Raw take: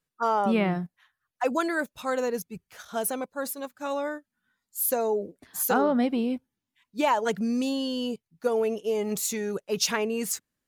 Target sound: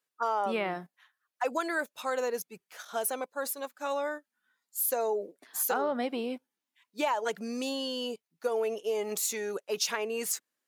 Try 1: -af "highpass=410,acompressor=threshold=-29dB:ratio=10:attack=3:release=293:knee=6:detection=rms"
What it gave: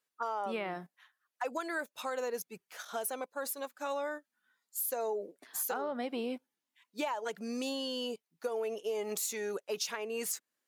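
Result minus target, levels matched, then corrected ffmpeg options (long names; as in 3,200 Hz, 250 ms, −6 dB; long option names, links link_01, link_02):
downward compressor: peak gain reduction +6.5 dB
-af "highpass=410,acompressor=threshold=-21.5dB:ratio=10:attack=3:release=293:knee=6:detection=rms"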